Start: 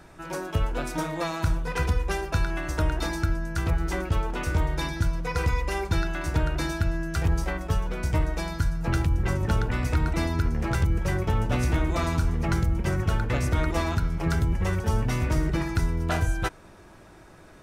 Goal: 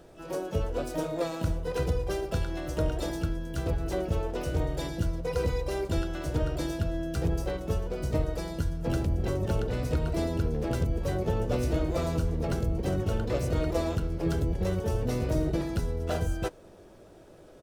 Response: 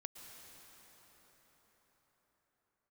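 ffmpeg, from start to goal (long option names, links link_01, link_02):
-filter_complex "[0:a]asplit=3[link_01][link_02][link_03];[link_02]asetrate=35002,aresample=44100,atempo=1.25992,volume=-16dB[link_04];[link_03]asetrate=88200,aresample=44100,atempo=0.5,volume=-9dB[link_05];[link_01][link_04][link_05]amix=inputs=3:normalize=0,equalizer=frequency=500:width_type=o:width=1:gain=11,equalizer=frequency=1000:width_type=o:width=1:gain=-5,equalizer=frequency=2000:width_type=o:width=1:gain=-6,volume=-5.5dB"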